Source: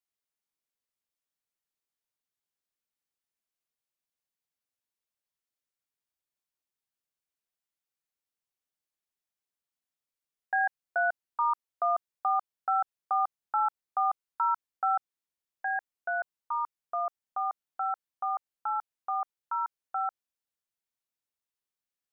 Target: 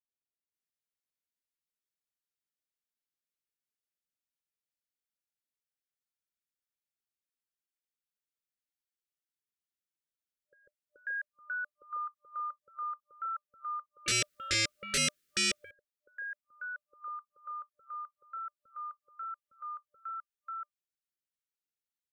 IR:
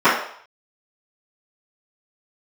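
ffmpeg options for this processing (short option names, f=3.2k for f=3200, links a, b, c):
-filter_complex "[0:a]acrossover=split=650[a][b];[b]adelay=540[c];[a][c]amix=inputs=2:normalize=0,asettb=1/sr,asplit=3[d][e][f];[d]atrim=end=14.064[g];[e]atrim=start=14.06:end=15.71,asetpts=PTS-STARTPTS,afade=t=in:d=0.004:c=qsin,afade=t=out:st=1.646:d=0.004:c=qsin,aeval=exprs='0.112*sin(PI/2*6.31*val(0)/0.112)':c=same[h];[f]atrim=start=15.706[i];[g][h]acrossfade=d=0.004:c1=hsin:c2=qsin[j];[j][i]acrossfade=d=0.004:c1=qsin:c2=hsin,afftfilt=real='re*(1-between(b*sr/4096,600,1200))':imag='im*(1-between(b*sr/4096,600,1200))':win_size=4096:overlap=0.75,volume=-6dB"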